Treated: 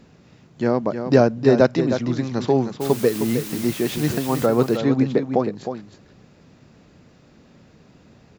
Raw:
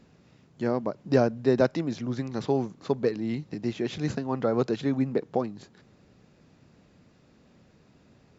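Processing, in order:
0:02.80–0:04.45: background noise white −43 dBFS
single-tap delay 312 ms −8.5 dB
level +7 dB

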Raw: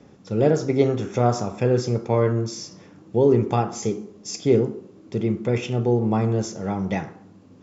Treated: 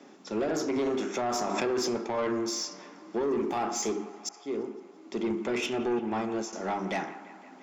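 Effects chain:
0:03.23–0:03.65: running median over 5 samples
high-pass filter 260 Hz 24 dB per octave
0:04.29–0:05.31: fade in
mains-hum notches 50/100/150/200/250/300/350/400/450 Hz
0:05.99–0:06.53: downward expander −22 dBFS
parametric band 490 Hz −11.5 dB 0.25 octaves
brickwall limiter −20 dBFS, peak gain reduction 10 dB
soft clipping −26.5 dBFS, distortion −13 dB
delay with a band-pass on its return 170 ms, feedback 70%, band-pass 1,400 Hz, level −14 dB
0:01.35–0:01.91: background raised ahead of every attack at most 23 dB per second
level +3 dB

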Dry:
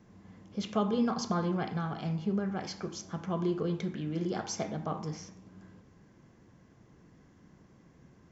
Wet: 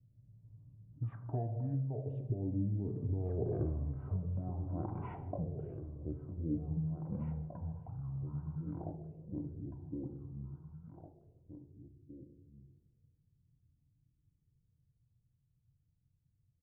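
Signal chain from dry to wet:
source passing by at 0:01.79, 40 m/s, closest 3.9 metres
low-pass that shuts in the quiet parts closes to 300 Hz, open at −50.5 dBFS
octave-band graphic EQ 125/250/500/4,000 Hz −8/+10/−6/−7 dB
downward compressor 6 to 1, threshold −53 dBFS, peak gain reduction 18.5 dB
hollow resonant body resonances 570/3,100 Hz, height 8 dB
auto-filter low-pass sine 0.54 Hz 610–2,200 Hz
single-tap delay 1,085 ms −11 dB
wrong playback speed 15 ips tape played at 7.5 ips
level +17.5 dB

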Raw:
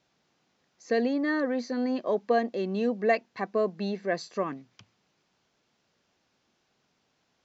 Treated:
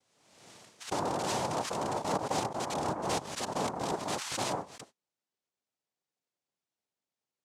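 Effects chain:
loose part that buzzes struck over −34 dBFS, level −18 dBFS
high-shelf EQ 4,700 Hz +2 dB
reversed playback
downward compressor 5 to 1, threshold −40 dBFS, peak gain reduction 19 dB
reversed playback
noise gate −60 dBFS, range −28 dB
cochlear-implant simulation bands 2
dynamic equaliser 910 Hz, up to +5 dB, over −56 dBFS, Q 1.8
background raised ahead of every attack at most 51 dB per second
level +6 dB

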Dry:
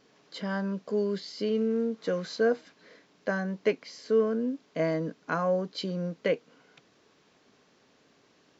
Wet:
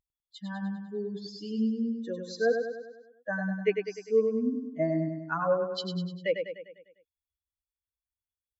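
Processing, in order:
spectral dynamics exaggerated over time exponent 3
repeating echo 100 ms, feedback 53%, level −6 dB
level +3.5 dB

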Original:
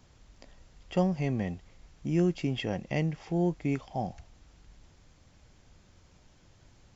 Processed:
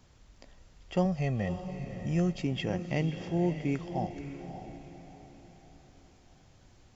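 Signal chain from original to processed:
0:01.05–0:02.42: comb filter 1.6 ms, depth 59%
on a send: feedback delay with all-pass diffusion 576 ms, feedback 42%, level −9.5 dB
on the sum: level −1 dB

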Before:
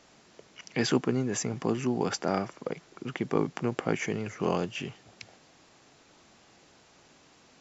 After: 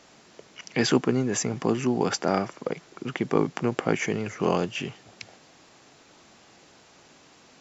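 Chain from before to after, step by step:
low-shelf EQ 83 Hz −5.5 dB
level +4.5 dB

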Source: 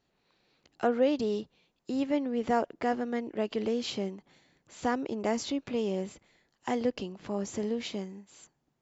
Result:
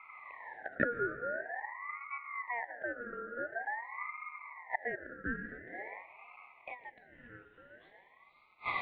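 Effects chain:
feedback delay with all-pass diffusion 541 ms, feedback 41%, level −6 dB
gate with flip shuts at −32 dBFS, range −37 dB
on a send at −14 dB: convolution reverb RT60 2.1 s, pre-delay 75 ms
on the sum: band-pass filter sweep 400 Hz → 1,700 Hz, 0:03.62–0:07.59
mid-hump overdrive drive 20 dB, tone 1,600 Hz, clips at −34 dBFS
elliptic low-pass filter 2,700 Hz
flat-topped bell 580 Hz +14.5 dB
ring modulator whose carrier an LFO sweeps 1,300 Hz, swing 30%, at 0.47 Hz
level +12 dB

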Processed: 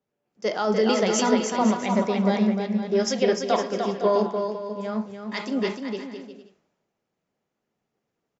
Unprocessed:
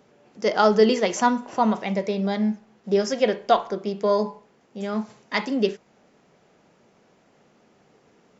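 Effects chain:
brickwall limiter −14.5 dBFS, peak gain reduction 9.5 dB
bouncing-ball delay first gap 300 ms, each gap 0.7×, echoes 5
multiband upward and downward expander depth 70%

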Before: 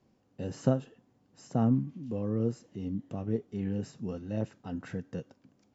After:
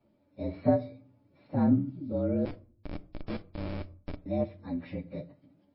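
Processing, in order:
partials spread apart or drawn together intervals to 114%
parametric band 300 Hz −2 dB 1.4 octaves
0:02.45–0:04.26: comparator with hysteresis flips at −31 dBFS
hollow resonant body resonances 300/580/2,300 Hz, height 11 dB, ringing for 35 ms
on a send at −15.5 dB: convolution reverb RT60 0.45 s, pre-delay 5 ms
on the sum: MP3 24 kbit/s 12,000 Hz

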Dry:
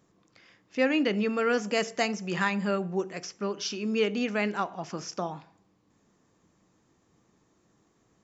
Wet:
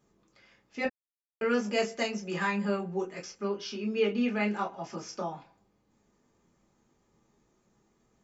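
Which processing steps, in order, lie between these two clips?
0:00.85–0:01.41: silence
0:03.47–0:04.41: low-pass filter 4,800 Hz 12 dB per octave
convolution reverb, pre-delay 3 ms, DRR −2.5 dB
level −8 dB

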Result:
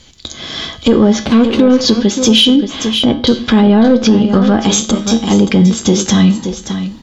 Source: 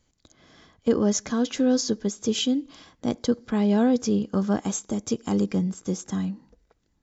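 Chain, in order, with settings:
0:01.21–0:01.81: running median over 25 samples
camcorder AGC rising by 5.1 dB per second
treble cut that deepens with the level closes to 1,900 Hz, closed at −18 dBFS
parametric band 3,500 Hz +12 dB 0.98 octaves
in parallel at +1 dB: downward compressor, threshold −30 dBFS, peak gain reduction 14 dB
on the sum: tuned comb filter 74 Hz, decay 0.34 s, harmonics odd, mix 70%
soft clipping −19 dBFS, distortion −19 dB
0:02.56–0:03.27: high-frequency loss of the air 340 metres
0:04.91–0:05.31: tuned comb filter 77 Hz, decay 0.3 s, harmonics all, mix 90%
single-tap delay 576 ms −11.5 dB
rectangular room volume 3,900 cubic metres, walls furnished, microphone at 0.36 metres
boost into a limiter +24.5 dB
level −1 dB

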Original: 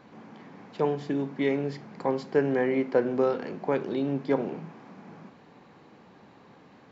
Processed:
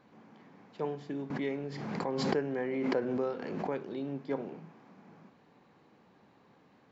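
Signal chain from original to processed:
0:01.30–0:03.70: background raised ahead of every attack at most 26 dB per second
level −9 dB

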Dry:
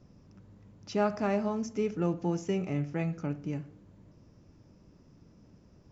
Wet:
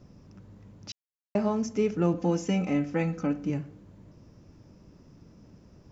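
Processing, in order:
0:00.92–0:01.35: silence
0:02.14–0:03.50: comb filter 3.9 ms, depth 73%
level +4.5 dB

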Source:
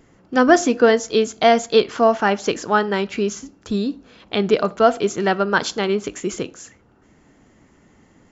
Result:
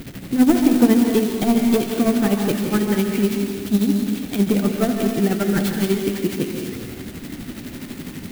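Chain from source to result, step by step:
linear delta modulator 32 kbit/s, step −30.5 dBFS
octave-band graphic EQ 125/250/500/1,000/4,000 Hz +4/+7/−4/−10/+4 dB
soft clipping −8 dBFS, distortion −17 dB
amplitude tremolo 12 Hz, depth 75%
dense smooth reverb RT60 1.6 s, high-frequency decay 0.9×, pre-delay 120 ms, DRR 2.5 dB
converter with an unsteady clock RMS 0.047 ms
level +2.5 dB

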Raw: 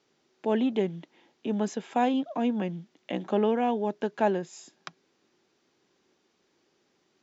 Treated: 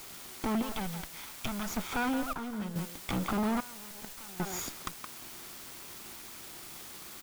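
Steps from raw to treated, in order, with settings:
lower of the sound and its delayed copy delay 0.88 ms
brickwall limiter −25.5 dBFS, peak gain reduction 8.5 dB
parametric band 1,400 Hz +5 dB 0.38 octaves
downward compressor 3 to 1, threshold −52 dBFS, peak gain reduction 17 dB
0:00.62–0:01.68: parametric band 330 Hz −13.5 dB 1.9 octaves
far-end echo of a speakerphone 170 ms, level −10 dB
0:03.60–0:04.40: output level in coarse steps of 23 dB
background noise white −65 dBFS
0:02.33–0:02.76: tuned comb filter 210 Hz, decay 1 s, mix 70%
leveller curve on the samples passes 3
level +8 dB

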